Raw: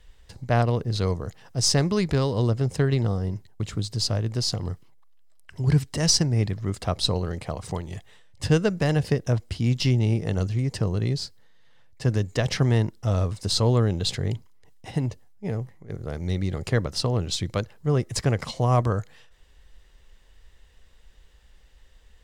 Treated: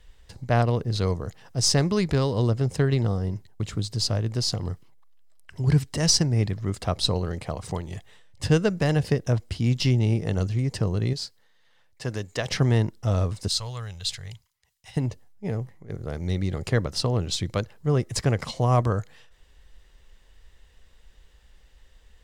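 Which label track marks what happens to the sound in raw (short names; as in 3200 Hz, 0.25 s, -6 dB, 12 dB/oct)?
11.130000	12.500000	low shelf 340 Hz -10 dB
13.480000	14.970000	passive tone stack bass-middle-treble 10-0-10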